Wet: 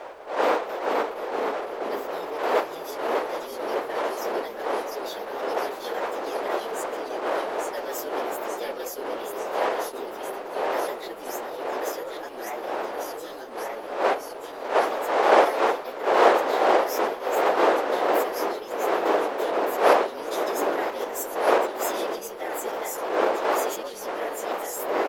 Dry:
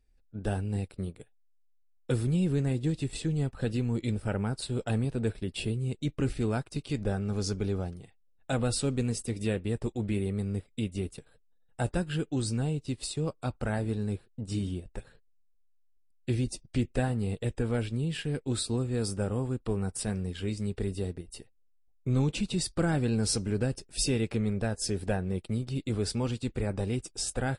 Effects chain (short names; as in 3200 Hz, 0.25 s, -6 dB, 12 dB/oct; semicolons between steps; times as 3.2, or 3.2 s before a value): inharmonic rescaling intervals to 112%; wind noise 600 Hz -27 dBFS; HPF 450 Hz 24 dB/oct; added noise pink -68 dBFS; echoes that change speed 0.492 s, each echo -1 st, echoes 3; tempo 1.1×; gain +2.5 dB